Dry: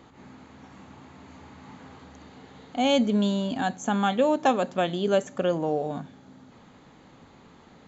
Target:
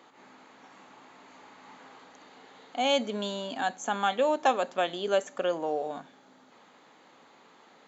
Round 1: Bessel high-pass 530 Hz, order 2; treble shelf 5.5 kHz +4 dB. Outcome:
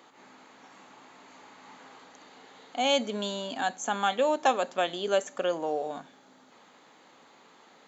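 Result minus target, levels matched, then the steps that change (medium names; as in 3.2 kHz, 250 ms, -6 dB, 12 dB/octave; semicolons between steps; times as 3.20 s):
8 kHz band +3.5 dB
change: treble shelf 5.5 kHz -2 dB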